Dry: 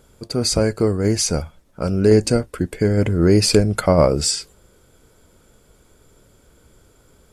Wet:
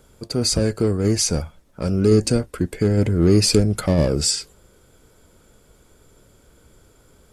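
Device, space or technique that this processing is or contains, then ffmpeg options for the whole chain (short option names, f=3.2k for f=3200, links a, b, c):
one-band saturation: -filter_complex "[0:a]acrossover=split=440|3300[a][b][c];[b]asoftclip=type=tanh:threshold=-27.5dB[d];[a][d][c]amix=inputs=3:normalize=0"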